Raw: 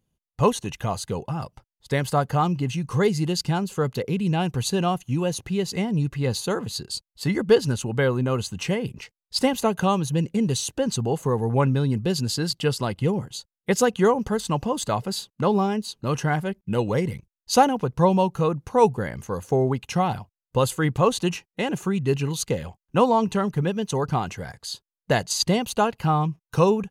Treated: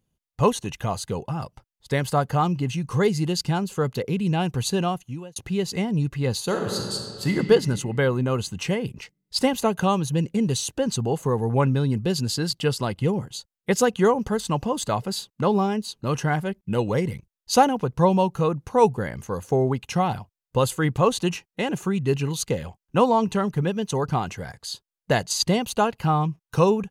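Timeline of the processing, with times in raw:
4.78–5.36 s: fade out
6.44–7.32 s: reverb throw, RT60 2.1 s, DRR 1.5 dB

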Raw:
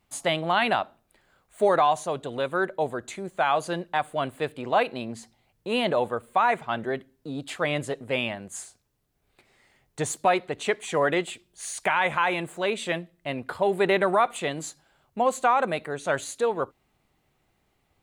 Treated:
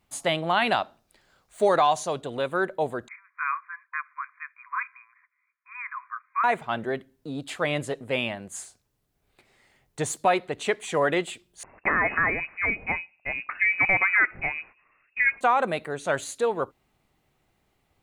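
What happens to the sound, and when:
0.67–2.21 s: peaking EQ 5.2 kHz +8 dB 0.98 oct
3.08–6.44 s: brick-wall FIR band-pass 980–2500 Hz
11.63–15.41 s: frequency inversion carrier 2.7 kHz

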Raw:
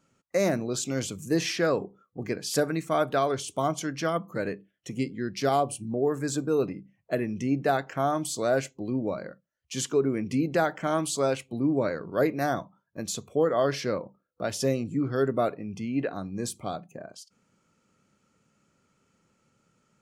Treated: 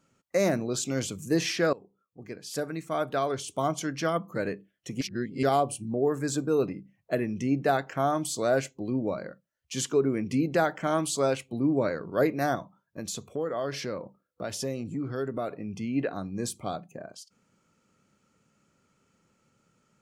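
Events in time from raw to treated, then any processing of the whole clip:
1.73–3.87 s: fade in linear, from -21 dB
5.01–5.43 s: reverse
12.55–15.55 s: compression 2:1, threshold -32 dBFS

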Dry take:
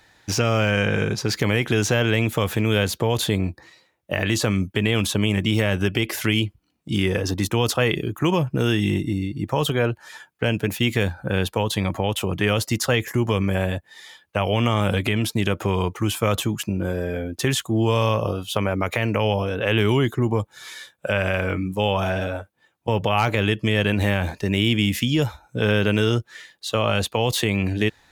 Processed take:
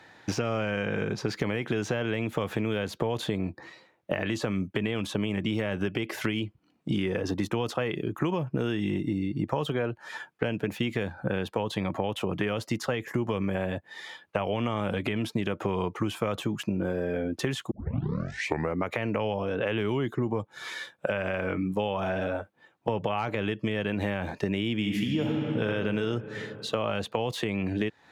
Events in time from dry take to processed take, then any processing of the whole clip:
17.71 s: tape start 1.13 s
24.74–25.68 s: reverb throw, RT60 2.3 s, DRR 1 dB
whole clip: high-pass 140 Hz 12 dB/octave; compression 5:1, threshold -31 dBFS; low-pass 1.9 kHz 6 dB/octave; trim +5.5 dB

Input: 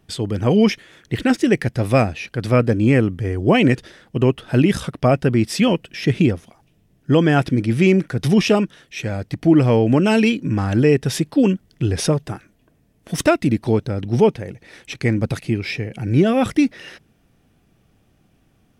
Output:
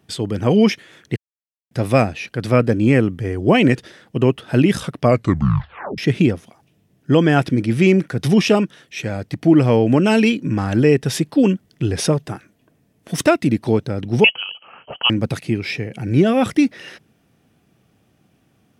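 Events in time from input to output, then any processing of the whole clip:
1.16–1.71 s: mute
5.04 s: tape stop 0.94 s
14.24–15.10 s: frequency inversion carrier 3.1 kHz
whole clip: high-pass 97 Hz; trim +1 dB

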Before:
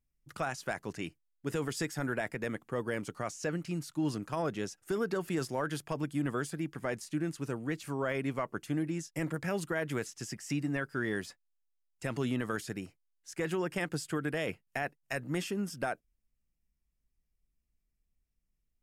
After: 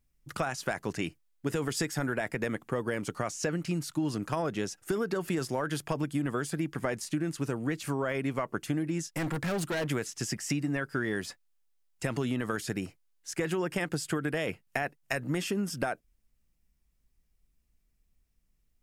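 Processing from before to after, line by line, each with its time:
9.05–9.90 s: overload inside the chain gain 36 dB
whole clip: compression, threshold -35 dBFS; trim +8 dB

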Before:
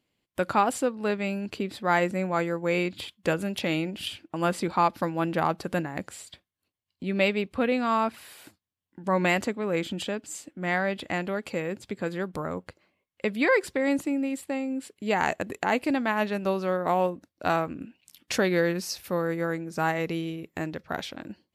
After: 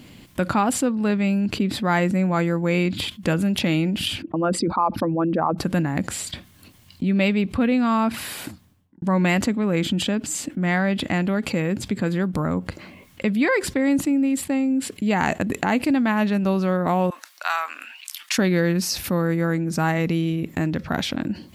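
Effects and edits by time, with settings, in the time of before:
4.22–5.58 s: resonances exaggerated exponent 2
8.23–9.02 s: studio fade out
17.10–18.38 s: high-pass 1 kHz 24 dB/octave
whole clip: resonant low shelf 320 Hz +6 dB, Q 1.5; level flattener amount 50%

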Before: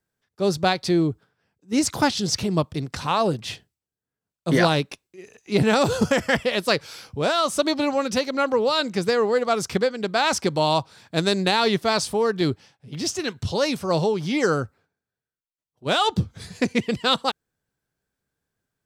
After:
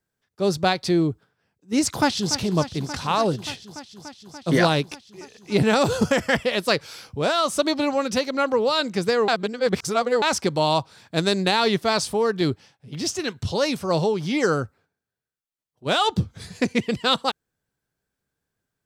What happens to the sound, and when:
1.89–2.34 s: echo throw 290 ms, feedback 85%, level -12.5 dB
9.28–10.22 s: reverse

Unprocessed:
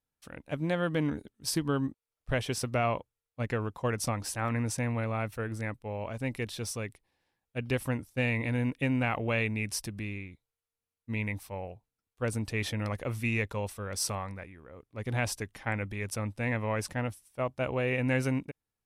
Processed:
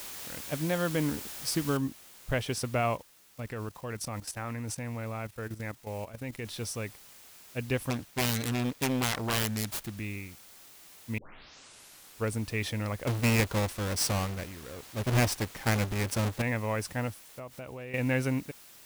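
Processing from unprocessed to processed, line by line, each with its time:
1.77 s: noise floor step -42 dB -53 dB
2.95–6.45 s: level held to a coarse grid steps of 12 dB
7.90–9.97 s: self-modulated delay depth 0.95 ms
11.18 s: tape start 1.15 s
13.07–16.42 s: square wave that keeps the level
17.24–17.94 s: compression 5:1, threshold -39 dBFS

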